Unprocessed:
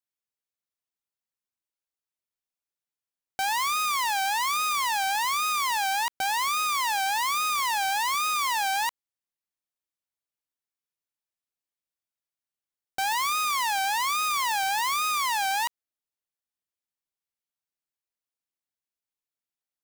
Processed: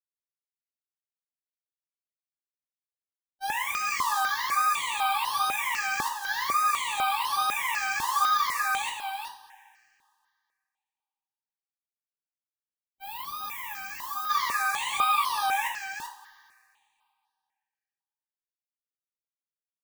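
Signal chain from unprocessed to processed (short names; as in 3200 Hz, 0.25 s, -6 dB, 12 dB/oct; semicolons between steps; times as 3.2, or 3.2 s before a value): dynamic EQ 1600 Hz, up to +5 dB, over -40 dBFS, Q 1.1; gate -22 dBFS, range -56 dB; on a send: echo 0.385 s -7 dB; on the sum: two-slope reverb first 0.3 s, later 2.2 s, from -20 dB, DRR -4.5 dB; spectral gain 11.86–14.3, 380–12000 Hz -10 dB; step phaser 4 Hz 610–7300 Hz; gain +2.5 dB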